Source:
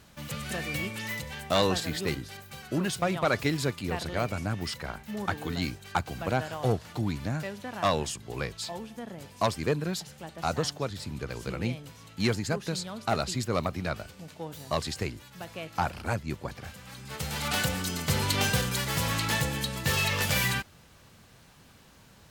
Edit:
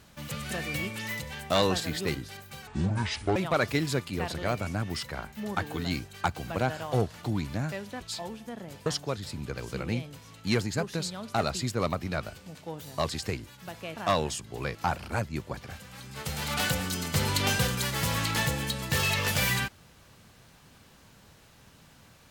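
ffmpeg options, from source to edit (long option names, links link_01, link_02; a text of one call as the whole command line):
ffmpeg -i in.wav -filter_complex "[0:a]asplit=7[link_01][link_02][link_03][link_04][link_05][link_06][link_07];[link_01]atrim=end=2.674[link_08];[link_02]atrim=start=2.67:end=3.07,asetpts=PTS-STARTPTS,asetrate=25578,aresample=44100[link_09];[link_03]atrim=start=3.066:end=7.722[link_10];[link_04]atrim=start=8.508:end=9.362[link_11];[link_05]atrim=start=10.588:end=15.692[link_12];[link_06]atrim=start=7.718:end=8.512[link_13];[link_07]atrim=start=15.688[link_14];[link_08][link_09]acrossfade=duration=0.004:curve1=hsin:curve2=hsin[link_15];[link_15][link_10]acrossfade=duration=0.004:curve1=hsin:curve2=hsin[link_16];[link_16][link_11]acrossfade=duration=0.004:curve1=hsin:curve2=hsin[link_17];[link_17][link_12]acrossfade=duration=0.004:curve1=hsin:curve2=hsin[link_18];[link_18][link_13]acrossfade=duration=0.004:curve1=hsin:curve2=hsin[link_19];[link_19][link_14]acrossfade=duration=0.004:curve1=hsin:curve2=hsin" out.wav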